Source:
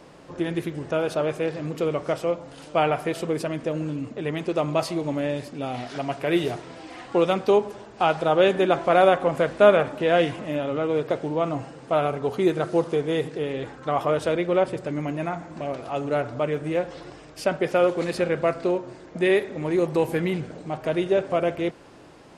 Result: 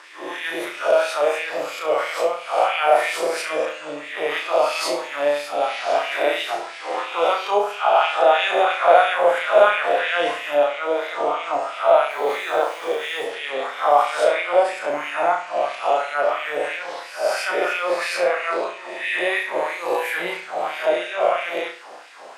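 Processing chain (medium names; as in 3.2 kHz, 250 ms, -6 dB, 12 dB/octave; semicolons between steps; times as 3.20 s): reverse spectral sustain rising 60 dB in 1.02 s; high-pass 110 Hz; in parallel at -3 dB: compressor with a negative ratio -26 dBFS; 12.10–13.23 s: on the sum: word length cut 8-bit, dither none; LFO high-pass sine 3 Hz 590–2300 Hz; on a send: flutter echo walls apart 5.9 m, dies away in 0.41 s; on the sum: trim -3 dB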